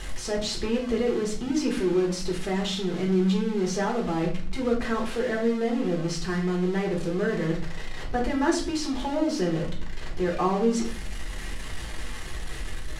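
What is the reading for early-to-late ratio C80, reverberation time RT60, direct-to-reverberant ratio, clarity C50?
12.5 dB, 0.45 s, −1.5 dB, 8.0 dB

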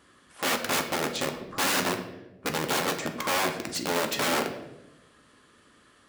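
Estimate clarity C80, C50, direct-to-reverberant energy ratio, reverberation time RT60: 11.0 dB, 8.5 dB, 4.0 dB, 1.0 s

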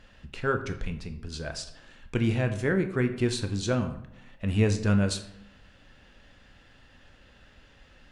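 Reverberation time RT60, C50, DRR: 0.80 s, 11.0 dB, 7.0 dB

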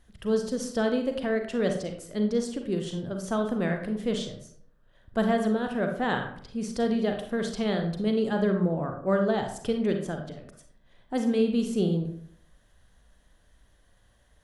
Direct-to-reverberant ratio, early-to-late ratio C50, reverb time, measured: 4.0 dB, 6.5 dB, 0.65 s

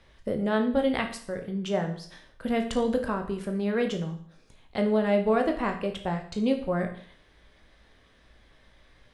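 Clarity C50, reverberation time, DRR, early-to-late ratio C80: 9.5 dB, 0.55 s, 4.0 dB, 13.5 dB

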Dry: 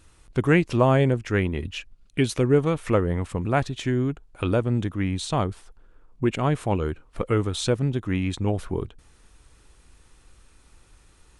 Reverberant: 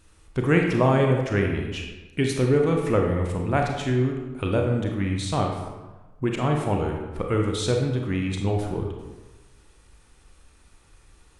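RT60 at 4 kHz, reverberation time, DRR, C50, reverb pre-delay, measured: 0.75 s, 1.2 s, 1.0 dB, 3.5 dB, 28 ms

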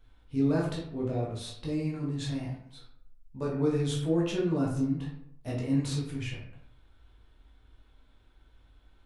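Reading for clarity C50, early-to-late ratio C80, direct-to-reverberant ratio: 4.0 dB, 8.0 dB, −5.0 dB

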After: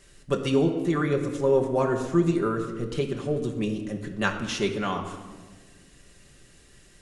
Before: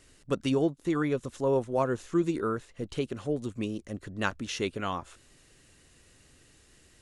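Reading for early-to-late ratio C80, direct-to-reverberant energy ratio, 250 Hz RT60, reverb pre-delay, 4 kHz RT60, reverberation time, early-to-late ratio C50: 9.5 dB, 1.5 dB, 2.1 s, 5 ms, 1.0 s, 1.5 s, 8.0 dB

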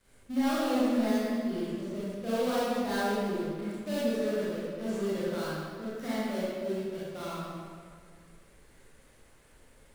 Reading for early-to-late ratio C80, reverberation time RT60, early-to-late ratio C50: −2.0 dB, 2.1 s, −5.5 dB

